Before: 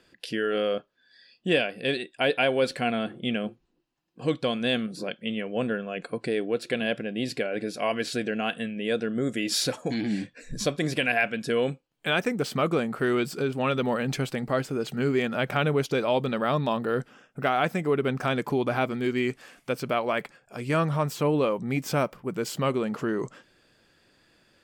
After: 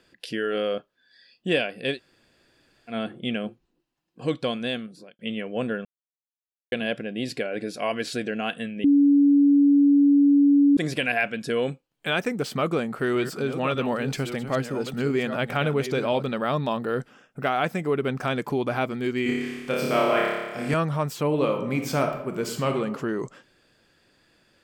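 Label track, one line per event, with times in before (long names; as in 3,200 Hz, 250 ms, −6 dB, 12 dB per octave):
1.950000	2.920000	fill with room tone, crossfade 0.10 s
4.490000	5.190000	fade out
5.850000	6.720000	silence
8.840000	10.770000	beep over 284 Hz −13.5 dBFS
12.560000	16.230000	delay that plays each chunk backwards 594 ms, level −9.5 dB
19.230000	20.740000	flutter between parallel walls apart 4.9 metres, dies away in 1.3 s
21.260000	22.720000	thrown reverb, RT60 0.86 s, DRR 4 dB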